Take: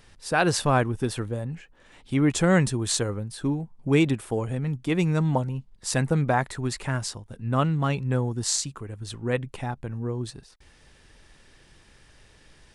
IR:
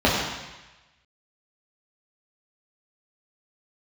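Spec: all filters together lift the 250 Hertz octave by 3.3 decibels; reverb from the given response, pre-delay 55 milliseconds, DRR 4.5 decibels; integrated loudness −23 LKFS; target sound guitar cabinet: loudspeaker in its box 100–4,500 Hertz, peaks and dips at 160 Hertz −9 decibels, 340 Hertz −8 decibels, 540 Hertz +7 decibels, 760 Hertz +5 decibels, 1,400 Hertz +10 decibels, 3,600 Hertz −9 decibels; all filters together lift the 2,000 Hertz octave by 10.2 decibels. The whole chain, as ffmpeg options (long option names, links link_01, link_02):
-filter_complex "[0:a]equalizer=frequency=250:width_type=o:gain=9,equalizer=frequency=2000:width_type=o:gain=7.5,asplit=2[link_01][link_02];[1:a]atrim=start_sample=2205,adelay=55[link_03];[link_02][link_03]afir=irnorm=-1:irlink=0,volume=-25.5dB[link_04];[link_01][link_04]amix=inputs=2:normalize=0,highpass=100,equalizer=frequency=160:width_type=q:width=4:gain=-9,equalizer=frequency=340:width_type=q:width=4:gain=-8,equalizer=frequency=540:width_type=q:width=4:gain=7,equalizer=frequency=760:width_type=q:width=4:gain=5,equalizer=frequency=1400:width_type=q:width=4:gain=10,equalizer=frequency=3600:width_type=q:width=4:gain=-9,lowpass=frequency=4500:width=0.5412,lowpass=frequency=4500:width=1.3066,volume=-3dB"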